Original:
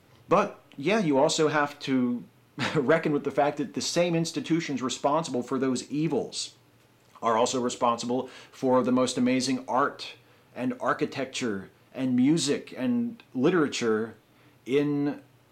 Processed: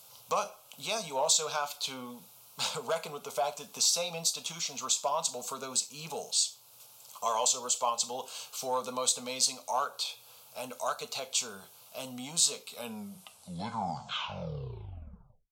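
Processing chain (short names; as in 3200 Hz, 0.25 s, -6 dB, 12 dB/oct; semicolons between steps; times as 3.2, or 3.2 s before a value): tape stop at the end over 2.88 s; tilt +4.5 dB/oct; compressor 1.5:1, threshold -39 dBFS, peak gain reduction 9 dB; fixed phaser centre 770 Hz, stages 4; gain +3 dB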